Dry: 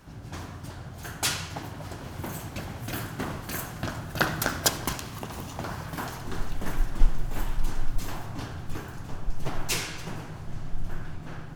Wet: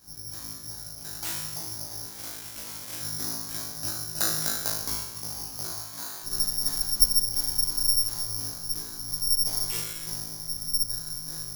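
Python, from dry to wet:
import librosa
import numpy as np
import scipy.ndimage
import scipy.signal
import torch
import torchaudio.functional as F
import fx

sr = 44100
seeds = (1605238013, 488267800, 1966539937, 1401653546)

y = fx.spec_flatten(x, sr, power=0.39, at=(2.1, 2.99), fade=0.02)
y = fx.highpass(y, sr, hz=fx.line((5.78, 800.0), (6.22, 350.0)), slope=6, at=(5.78, 6.22), fade=0.02)
y = fx.room_flutter(y, sr, wall_m=3.2, rt60_s=0.63)
y = (np.kron(scipy.signal.resample_poly(y, 1, 8), np.eye(8)[0]) * 8)[:len(y)]
y = y * 10.0 ** (-13.0 / 20.0)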